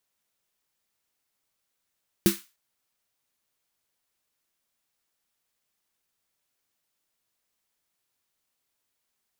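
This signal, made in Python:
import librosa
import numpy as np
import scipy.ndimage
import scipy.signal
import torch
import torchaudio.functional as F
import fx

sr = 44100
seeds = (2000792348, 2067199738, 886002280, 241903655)

y = fx.drum_snare(sr, seeds[0], length_s=0.3, hz=200.0, second_hz=340.0, noise_db=-7.5, noise_from_hz=1200.0, decay_s=0.16, noise_decay_s=0.31)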